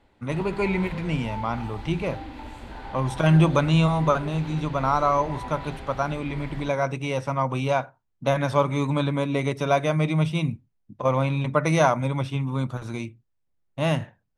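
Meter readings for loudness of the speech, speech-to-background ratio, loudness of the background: -24.5 LUFS, 14.0 dB, -38.5 LUFS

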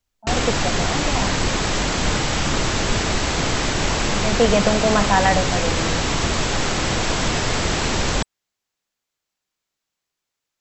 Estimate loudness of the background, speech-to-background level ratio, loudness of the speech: -21.0 LUFS, -1.5 dB, -22.5 LUFS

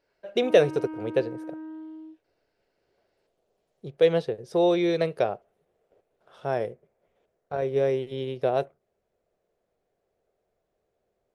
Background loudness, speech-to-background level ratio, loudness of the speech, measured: -38.5 LUFS, 12.5 dB, -26.0 LUFS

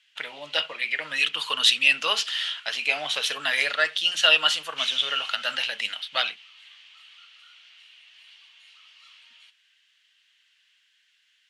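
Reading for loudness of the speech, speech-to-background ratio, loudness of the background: -23.0 LUFS, 19.0 dB, -42.0 LUFS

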